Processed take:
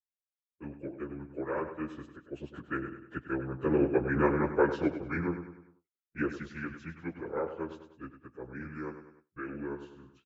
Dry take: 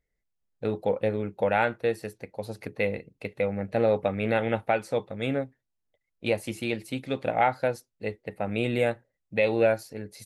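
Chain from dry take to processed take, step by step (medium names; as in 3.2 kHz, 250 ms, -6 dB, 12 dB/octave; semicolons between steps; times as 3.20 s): frequency-domain pitch shifter -7.5 st; Doppler pass-by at 4.40 s, 10 m/s, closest 10 m; low-pass 3.4 kHz 12 dB/octave; bass shelf 98 Hz -10.5 dB; on a send: feedback delay 99 ms, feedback 46%, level -8.5 dB; on the sum: harmonic-percussive split harmonic -9 dB; gate with hold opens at -55 dBFS; trim +5.5 dB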